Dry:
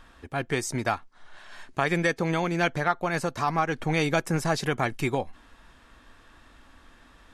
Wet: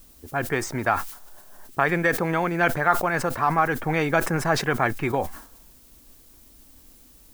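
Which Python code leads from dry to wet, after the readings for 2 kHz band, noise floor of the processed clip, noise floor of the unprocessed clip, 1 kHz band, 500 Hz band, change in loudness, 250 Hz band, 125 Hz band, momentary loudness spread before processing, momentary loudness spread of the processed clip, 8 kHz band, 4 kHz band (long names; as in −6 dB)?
+4.5 dB, −53 dBFS, −56 dBFS, +5.0 dB, +3.0 dB, +3.5 dB, +1.5 dB, +1.0 dB, 9 LU, 7 LU, +1.5 dB, −0.5 dB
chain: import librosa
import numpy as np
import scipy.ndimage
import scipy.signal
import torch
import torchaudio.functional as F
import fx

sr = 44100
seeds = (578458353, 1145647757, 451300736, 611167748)

y = fx.env_lowpass(x, sr, base_hz=330.0, full_db=-23.0)
y = fx.curve_eq(y, sr, hz=(200.0, 1600.0, 4100.0), db=(0, 6, -8))
y = fx.dmg_noise_colour(y, sr, seeds[0], colour='blue', level_db=-54.0)
y = fx.sustainer(y, sr, db_per_s=100.0)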